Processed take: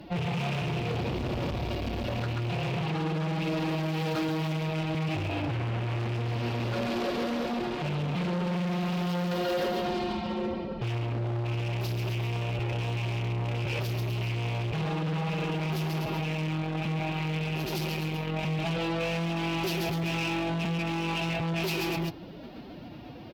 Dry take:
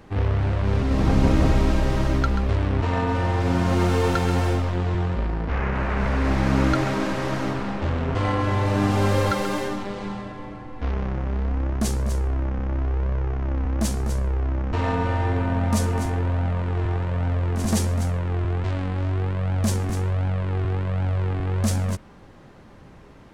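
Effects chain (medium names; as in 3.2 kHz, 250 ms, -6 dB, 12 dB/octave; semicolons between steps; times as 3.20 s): rattle on loud lows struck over -21 dBFS, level -23 dBFS; FFT filter 180 Hz 0 dB, 310 Hz -13 dB, 530 Hz +13 dB, 840 Hz -1 dB, 1.7 kHz -6 dB, 2.7 kHz +6 dB, 4.9 kHz +5 dB, 8.7 kHz -24 dB, 13 kHz +10 dB; formant-preserving pitch shift +10 st; bass shelf 350 Hz +4.5 dB; on a send: delay 136 ms -5 dB; on the sum: compression 4:1, threshold -19 dBFS, peak gain reduction 10.5 dB; hard clipper -23.5 dBFS, distortion -9 dB; high-pass 110 Hz 6 dB/octave; peak limiter -23 dBFS, peak gain reduction 4.5 dB; loudspeaker Doppler distortion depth 0.12 ms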